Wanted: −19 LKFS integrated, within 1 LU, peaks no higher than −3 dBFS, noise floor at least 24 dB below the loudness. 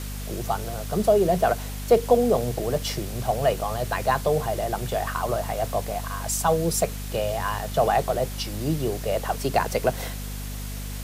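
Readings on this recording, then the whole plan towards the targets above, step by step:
mains hum 50 Hz; hum harmonics up to 250 Hz; level of the hum −31 dBFS; background noise floor −33 dBFS; target noise floor −49 dBFS; integrated loudness −25.0 LKFS; sample peak −7.0 dBFS; target loudness −19.0 LKFS
→ mains-hum notches 50/100/150/200/250 Hz
broadband denoise 16 dB, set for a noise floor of −33 dBFS
level +6 dB
brickwall limiter −3 dBFS

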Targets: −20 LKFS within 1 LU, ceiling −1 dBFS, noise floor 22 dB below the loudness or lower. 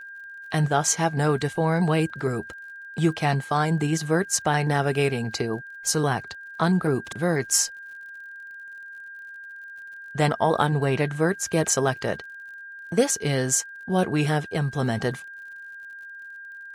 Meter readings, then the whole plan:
crackle rate 51 per second; interfering tone 1,600 Hz; level of the tone −38 dBFS; integrated loudness −24.0 LKFS; sample peak −6.5 dBFS; target loudness −20.0 LKFS
→ click removal
notch filter 1,600 Hz, Q 30
level +4 dB

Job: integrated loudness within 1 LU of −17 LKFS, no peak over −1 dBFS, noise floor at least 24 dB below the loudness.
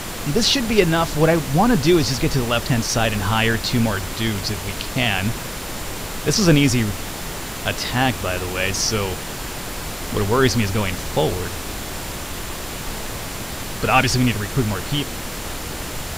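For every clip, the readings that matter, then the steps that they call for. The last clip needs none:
interfering tone 7,200 Hz; level of the tone −44 dBFS; background noise floor −30 dBFS; target noise floor −45 dBFS; integrated loudness −21.0 LKFS; sample peak −1.5 dBFS; target loudness −17.0 LKFS
→ notch filter 7,200 Hz, Q 30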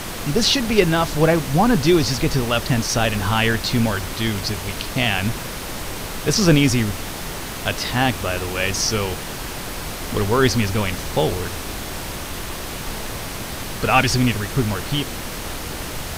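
interfering tone none found; background noise floor −30 dBFS; target noise floor −45 dBFS
→ noise reduction from a noise print 15 dB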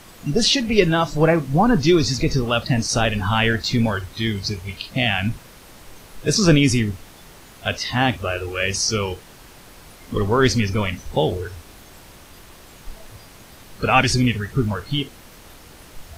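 background noise floor −45 dBFS; integrated loudness −20.0 LKFS; sample peak −2.0 dBFS; target loudness −17.0 LKFS
→ level +3 dB
brickwall limiter −1 dBFS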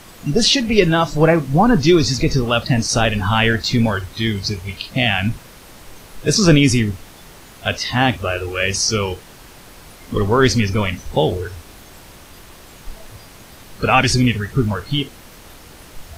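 integrated loudness −17.0 LKFS; sample peak −1.0 dBFS; background noise floor −42 dBFS

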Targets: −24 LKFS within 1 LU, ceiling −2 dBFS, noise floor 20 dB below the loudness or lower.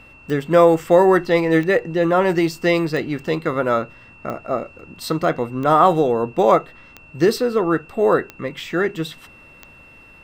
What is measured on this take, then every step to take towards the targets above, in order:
number of clicks 8; interfering tone 2,700 Hz; level of the tone −45 dBFS; integrated loudness −18.5 LKFS; sample peak −1.0 dBFS; target loudness −24.0 LKFS
→ click removal
notch filter 2,700 Hz, Q 30
level −5.5 dB

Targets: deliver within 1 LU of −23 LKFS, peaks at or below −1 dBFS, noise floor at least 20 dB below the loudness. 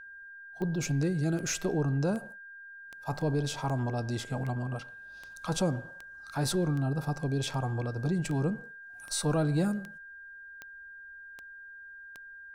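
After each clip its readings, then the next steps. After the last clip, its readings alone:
number of clicks 16; interfering tone 1,600 Hz; level of the tone −45 dBFS; integrated loudness −31.5 LKFS; sample peak −19.0 dBFS; target loudness −23.0 LKFS
→ click removal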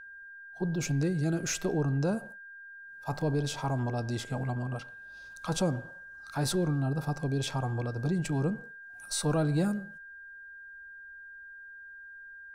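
number of clicks 0; interfering tone 1,600 Hz; level of the tone −45 dBFS
→ notch filter 1,600 Hz, Q 30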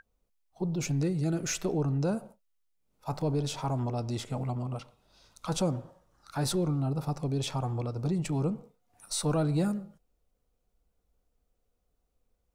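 interfering tone none found; integrated loudness −31.5 LKFS; sample peak −19.5 dBFS; target loudness −23.0 LKFS
→ level +8.5 dB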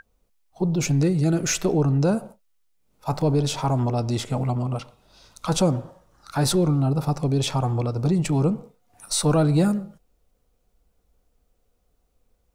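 integrated loudness −23.0 LKFS; sample peak −11.0 dBFS; background noise floor −69 dBFS

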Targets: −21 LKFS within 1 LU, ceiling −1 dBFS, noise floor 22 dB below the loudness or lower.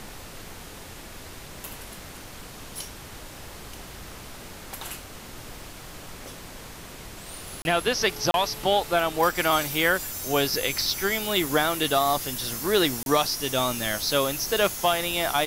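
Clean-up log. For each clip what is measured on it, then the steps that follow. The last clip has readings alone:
number of dropouts 3; longest dropout 31 ms; background noise floor −42 dBFS; target noise floor −46 dBFS; integrated loudness −24.0 LKFS; sample peak −9.5 dBFS; target loudness −21.0 LKFS
→ repair the gap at 0:07.62/0:08.31/0:13.03, 31 ms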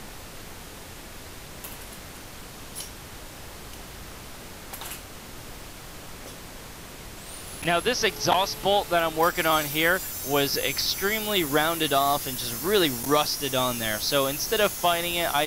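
number of dropouts 0; background noise floor −42 dBFS; target noise floor −46 dBFS
→ noise reduction from a noise print 6 dB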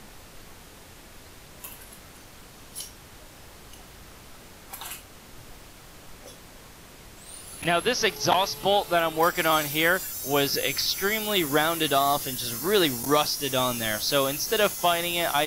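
background noise floor −48 dBFS; integrated loudness −24.0 LKFS; sample peak −8.0 dBFS; target loudness −21.0 LKFS
→ level +3 dB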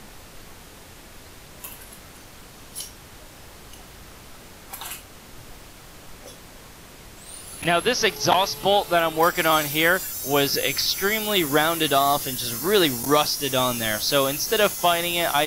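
integrated loudness −21.0 LKFS; sample peak −5.0 dBFS; background noise floor −45 dBFS

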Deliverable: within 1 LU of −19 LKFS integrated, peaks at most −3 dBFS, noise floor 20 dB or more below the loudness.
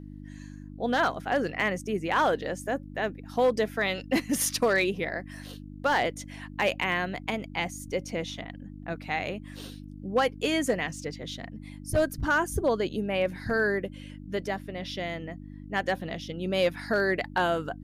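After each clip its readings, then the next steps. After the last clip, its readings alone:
share of clipped samples 0.3%; peaks flattened at −16.5 dBFS; mains hum 50 Hz; hum harmonics up to 300 Hz; level of the hum −41 dBFS; integrated loudness −28.5 LKFS; sample peak −16.5 dBFS; target loudness −19.0 LKFS
→ clipped peaks rebuilt −16.5 dBFS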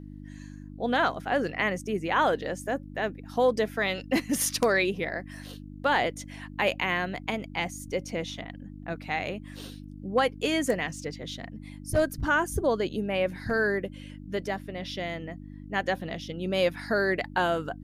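share of clipped samples 0.0%; mains hum 50 Hz; hum harmonics up to 300 Hz; level of the hum −40 dBFS
→ hum removal 50 Hz, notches 6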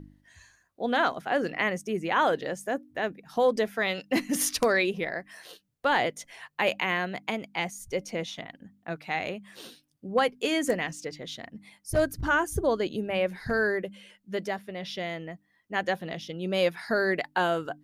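mains hum none found; integrated loudness −28.5 LKFS; sample peak −7.5 dBFS; target loudness −19.0 LKFS
→ level +9.5 dB
brickwall limiter −3 dBFS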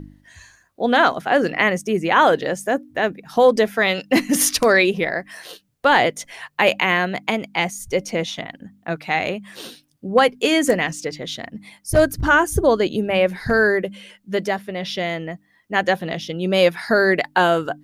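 integrated loudness −19.0 LKFS; sample peak −3.0 dBFS; background noise floor −61 dBFS

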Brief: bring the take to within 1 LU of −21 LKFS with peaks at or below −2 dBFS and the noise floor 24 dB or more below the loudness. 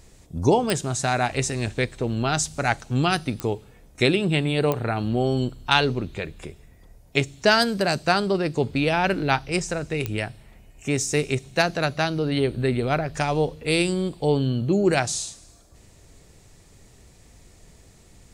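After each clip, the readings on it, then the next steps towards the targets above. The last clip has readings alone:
number of clicks 4; integrated loudness −23.5 LKFS; sample peak −2.0 dBFS; target loudness −21.0 LKFS
→ click removal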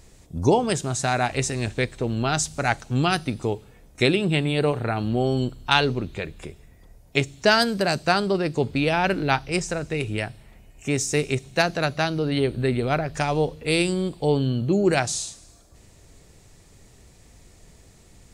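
number of clicks 0; integrated loudness −23.5 LKFS; sample peak −2.0 dBFS; target loudness −21.0 LKFS
→ level +2.5 dB
brickwall limiter −2 dBFS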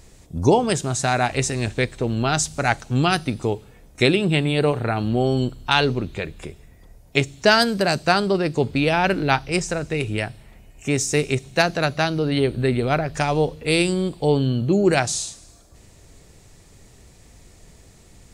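integrated loudness −21.0 LKFS; sample peak −2.0 dBFS; background noise floor −50 dBFS

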